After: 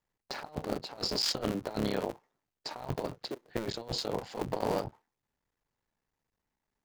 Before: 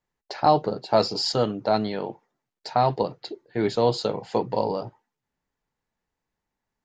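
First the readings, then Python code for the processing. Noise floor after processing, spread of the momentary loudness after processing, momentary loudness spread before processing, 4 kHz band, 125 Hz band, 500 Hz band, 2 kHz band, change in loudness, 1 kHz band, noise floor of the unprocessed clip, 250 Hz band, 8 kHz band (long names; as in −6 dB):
below −85 dBFS, 13 LU, 13 LU, −4.0 dB, −9.0 dB, −12.0 dB, −5.0 dB, −10.5 dB, −15.5 dB, −85 dBFS, −8.0 dB, −0.5 dB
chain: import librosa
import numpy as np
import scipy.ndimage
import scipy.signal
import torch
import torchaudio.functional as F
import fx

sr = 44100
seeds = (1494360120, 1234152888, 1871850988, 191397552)

y = fx.cycle_switch(x, sr, every=3, mode='muted')
y = fx.over_compress(y, sr, threshold_db=-28.0, ratio=-0.5)
y = y * librosa.db_to_amplitude(-5.0)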